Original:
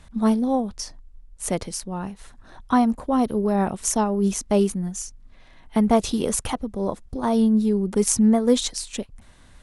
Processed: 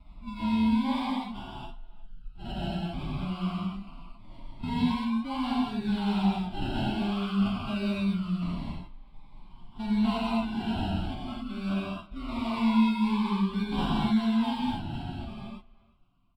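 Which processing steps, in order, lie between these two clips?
ending faded out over 1.23 s; bell 8300 Hz +12 dB 0.25 oct; transient shaper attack -6 dB, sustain -10 dB; compressor 1.5:1, threshold -42 dBFS, peak gain reduction 10 dB; decimation with a swept rate 29×, swing 60% 0.83 Hz; fixed phaser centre 1800 Hz, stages 6; time stretch by phase-locked vocoder 1.7×; air absorption 120 m; speakerphone echo 0.36 s, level -21 dB; reverb, pre-delay 3 ms, DRR -7 dB; cascading phaser falling 0.24 Hz

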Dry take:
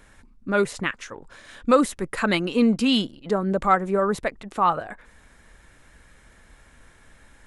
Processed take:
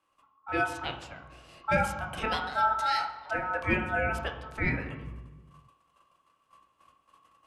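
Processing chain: gate -49 dBFS, range -14 dB; ring modulator 1100 Hz; on a send: reverb RT60 1.2 s, pre-delay 3 ms, DRR 2 dB; on the sum: gain -7.5 dB

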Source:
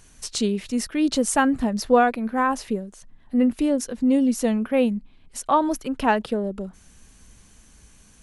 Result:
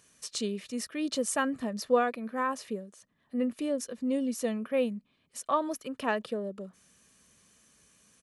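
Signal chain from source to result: HPF 180 Hz 12 dB/oct; bell 760 Hz -5.5 dB 0.35 oct; comb 1.7 ms, depth 31%; gain -7.5 dB

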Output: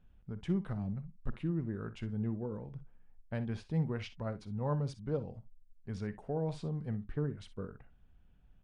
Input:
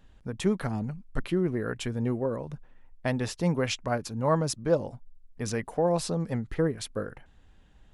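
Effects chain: EQ curve 210 Hz 0 dB, 350 Hz -6 dB, 3600 Hz -9 dB, 8000 Hz -20 dB; speed mistake 48 kHz file played as 44.1 kHz; early reflections 48 ms -18 dB, 62 ms -15.5 dB; gain -5.5 dB

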